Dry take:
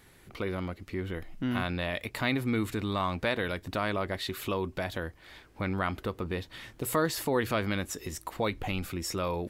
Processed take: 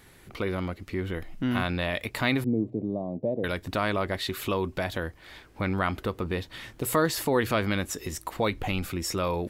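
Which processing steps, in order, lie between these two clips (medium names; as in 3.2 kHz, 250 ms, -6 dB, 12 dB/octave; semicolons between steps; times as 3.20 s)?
2.44–3.44 s: elliptic band-pass 120–630 Hz, stop band 40 dB; trim +3.5 dB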